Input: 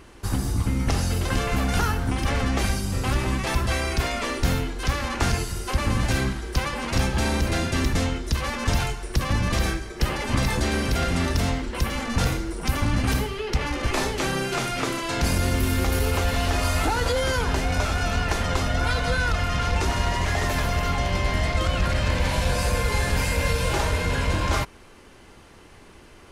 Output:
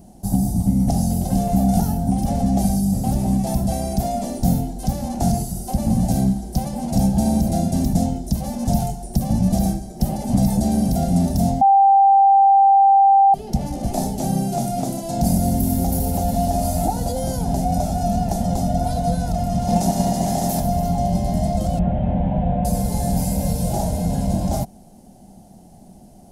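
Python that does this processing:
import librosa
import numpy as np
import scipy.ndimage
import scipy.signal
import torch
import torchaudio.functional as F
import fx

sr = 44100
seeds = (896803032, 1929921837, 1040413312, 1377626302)

y = fx.spec_clip(x, sr, under_db=16, at=(19.67, 20.59), fade=0.02)
y = fx.delta_mod(y, sr, bps=16000, step_db=-30.5, at=(21.79, 22.65))
y = fx.edit(y, sr, fx.bleep(start_s=11.61, length_s=1.73, hz=787.0, db=-14.5), tone=tone)
y = fx.curve_eq(y, sr, hz=(100.0, 200.0, 300.0, 460.0, 730.0, 1100.0, 2500.0, 5300.0, 8000.0, 12000.0), db=(0, 15, 0, -7, 11, -20, -20, -3, 2, 8))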